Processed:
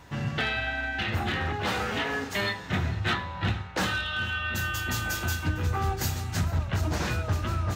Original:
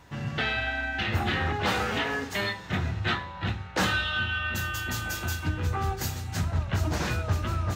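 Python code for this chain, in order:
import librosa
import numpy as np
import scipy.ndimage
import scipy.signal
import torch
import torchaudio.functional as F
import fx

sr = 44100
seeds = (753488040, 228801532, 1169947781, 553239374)

y = x + 10.0 ** (-20.0 / 20.0) * np.pad(x, (int(455 * sr / 1000.0), 0))[:len(x)]
y = np.clip(y, -10.0 ** (-20.5 / 20.0), 10.0 ** (-20.5 / 20.0))
y = fx.rider(y, sr, range_db=10, speed_s=0.5)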